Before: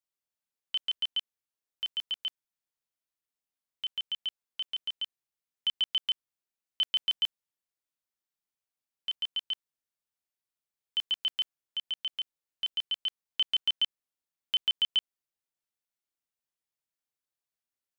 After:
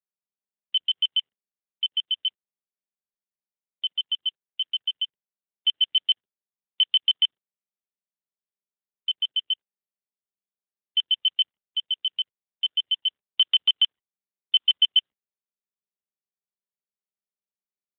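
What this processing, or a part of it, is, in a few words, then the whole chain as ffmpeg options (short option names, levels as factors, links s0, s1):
mobile call with aggressive noise cancelling: -filter_complex "[0:a]asettb=1/sr,asplit=3[s0][s1][s2];[s0]atrim=end=9.494[s3];[s1]atrim=start=9.49:end=11.09,asetpts=PTS-STARTPTS,afade=t=in:d=0.004:c=qsin,afade=t=out:st=1.596:d=0.004:c=qsin,bandreject=f=3900:w=7[s4];[s2]atrim=start=11.086[s5];[s3][s4]acrossfade=d=0.004:c1=hsin:c2=qsin[s6];[s6][s5]acrossfade=d=0.004:c1=qsin:c2=hsin,highpass=140,afftdn=nr=35:nf=-47,volume=2.66" -ar 8000 -c:a libopencore_amrnb -b:a 12200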